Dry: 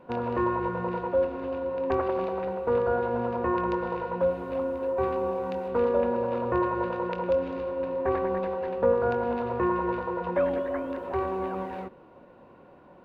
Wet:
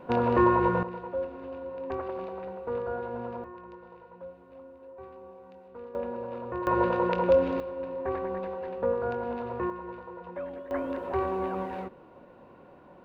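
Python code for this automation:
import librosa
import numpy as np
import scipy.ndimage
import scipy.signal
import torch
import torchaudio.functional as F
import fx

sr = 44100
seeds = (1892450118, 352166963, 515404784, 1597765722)

y = fx.gain(x, sr, db=fx.steps((0.0, 5.0), (0.83, -7.5), (3.44, -19.0), (5.95, -8.5), (6.67, 4.0), (7.6, -5.0), (9.7, -12.0), (10.71, 0.0)))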